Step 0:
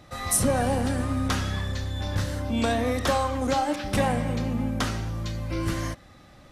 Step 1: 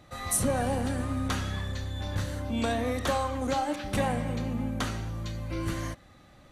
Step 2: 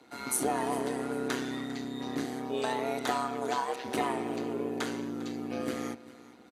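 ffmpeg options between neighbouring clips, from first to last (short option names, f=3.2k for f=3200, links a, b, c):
-af "bandreject=f=5.2k:w=9.2,volume=-4dB"
-af "afreqshift=180,tremolo=f=130:d=0.667,aecho=1:1:400|800|1200:0.119|0.0404|0.0137"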